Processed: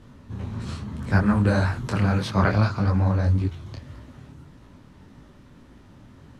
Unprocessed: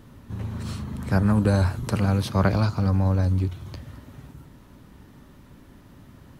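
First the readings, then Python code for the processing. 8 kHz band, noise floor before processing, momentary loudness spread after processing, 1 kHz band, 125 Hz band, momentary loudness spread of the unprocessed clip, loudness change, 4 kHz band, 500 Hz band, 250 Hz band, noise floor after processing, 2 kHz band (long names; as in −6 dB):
can't be measured, −50 dBFS, 16 LU, +2.5 dB, 0.0 dB, 18 LU, +0.5 dB, +0.5 dB, 0.0 dB, +0.5 dB, −50 dBFS, +5.0 dB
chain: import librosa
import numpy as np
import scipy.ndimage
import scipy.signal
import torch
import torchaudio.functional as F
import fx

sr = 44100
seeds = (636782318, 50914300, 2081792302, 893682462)

y = scipy.signal.sosfilt(scipy.signal.butter(2, 7900.0, 'lowpass', fs=sr, output='sos'), x)
y = fx.dynamic_eq(y, sr, hz=1700.0, q=1.2, threshold_db=-44.0, ratio=4.0, max_db=6)
y = fx.detune_double(y, sr, cents=60)
y = y * 10.0 ** (3.5 / 20.0)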